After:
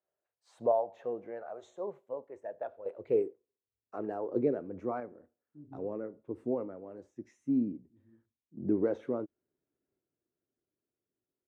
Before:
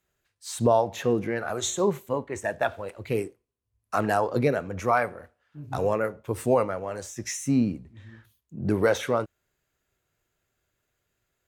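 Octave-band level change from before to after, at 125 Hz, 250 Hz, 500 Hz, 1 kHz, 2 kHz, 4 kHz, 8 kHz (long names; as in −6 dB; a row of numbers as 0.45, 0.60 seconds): −16.5 dB, −6.5 dB, −8.0 dB, −13.5 dB, −23.0 dB, below −30 dB, below −35 dB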